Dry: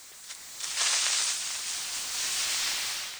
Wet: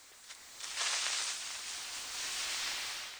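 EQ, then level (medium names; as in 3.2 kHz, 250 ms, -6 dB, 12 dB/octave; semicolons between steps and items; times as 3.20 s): peaking EQ 160 Hz -11 dB 0.39 oct; treble shelf 5.2 kHz -8 dB; -4.5 dB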